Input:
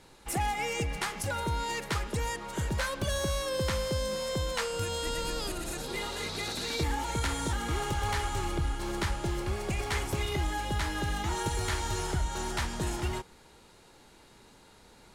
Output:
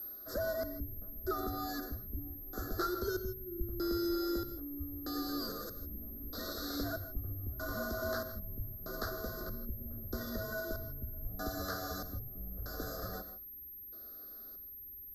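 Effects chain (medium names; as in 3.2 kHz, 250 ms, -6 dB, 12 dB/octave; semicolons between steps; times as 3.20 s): tracing distortion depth 0.13 ms; LFO low-pass square 0.79 Hz 250–3100 Hz; whistle 13 kHz -48 dBFS; tilt EQ +3.5 dB/octave; frequency shift -180 Hz; elliptic band-stop 1.4–4.7 kHz, stop band 70 dB; treble shelf 3 kHz -10 dB; static phaser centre 370 Hz, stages 4; gated-style reverb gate 180 ms rising, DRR 11 dB; trim +4 dB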